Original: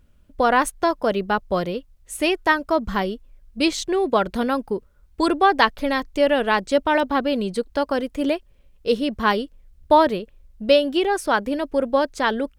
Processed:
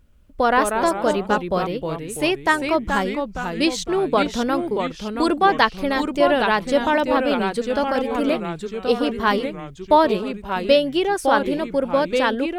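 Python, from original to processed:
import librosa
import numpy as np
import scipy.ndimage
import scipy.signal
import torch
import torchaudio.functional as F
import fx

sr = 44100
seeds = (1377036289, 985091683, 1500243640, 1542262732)

y = fx.echo_pitch(x, sr, ms=126, semitones=-2, count=3, db_per_echo=-6.0)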